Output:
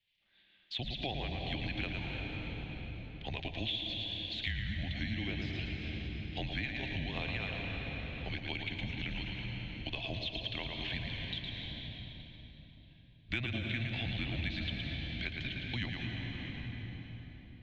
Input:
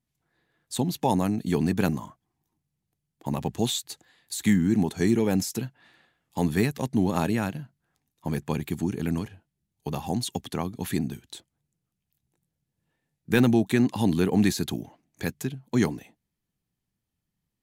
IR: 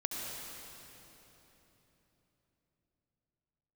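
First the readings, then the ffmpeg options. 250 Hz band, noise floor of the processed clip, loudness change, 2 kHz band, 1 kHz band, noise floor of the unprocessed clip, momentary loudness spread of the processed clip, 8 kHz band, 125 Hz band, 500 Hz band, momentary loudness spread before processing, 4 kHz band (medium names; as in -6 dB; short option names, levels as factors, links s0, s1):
-17.0 dB, -59 dBFS, -11.5 dB, -2.0 dB, -14.0 dB, -83 dBFS, 8 LU, under -30 dB, -9.0 dB, -16.5 dB, 16 LU, +0.5 dB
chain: -filter_complex "[0:a]acrossover=split=2600[s0][s1];[s1]acompressor=threshold=0.00794:ratio=4:attack=1:release=60[s2];[s0][s2]amix=inputs=2:normalize=0,highpass=f=170:t=q:w=0.5412,highpass=f=170:t=q:w=1.307,lowpass=f=3500:t=q:w=0.5176,lowpass=f=3500:t=q:w=0.7071,lowpass=f=3500:t=q:w=1.932,afreqshift=-130,aexciter=amount=10.8:drive=7.3:freq=2100,asplit=2[s3][s4];[1:a]atrim=start_sample=2205,adelay=112[s5];[s4][s5]afir=irnorm=-1:irlink=0,volume=0.562[s6];[s3][s6]amix=inputs=2:normalize=0,acompressor=threshold=0.0282:ratio=3,volume=0.501"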